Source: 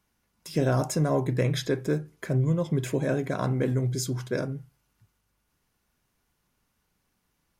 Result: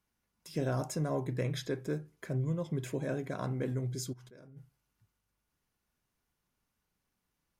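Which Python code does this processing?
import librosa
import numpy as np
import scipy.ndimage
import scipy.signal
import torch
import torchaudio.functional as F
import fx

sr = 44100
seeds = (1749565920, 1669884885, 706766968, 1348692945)

y = fx.level_steps(x, sr, step_db=23, at=(4.12, 4.56), fade=0.02)
y = y * librosa.db_to_amplitude(-8.5)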